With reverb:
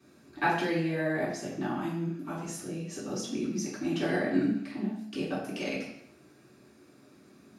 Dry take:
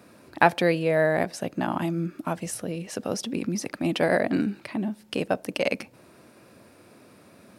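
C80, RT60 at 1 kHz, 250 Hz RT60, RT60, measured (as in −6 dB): 6.5 dB, 0.70 s, 0.80 s, 0.70 s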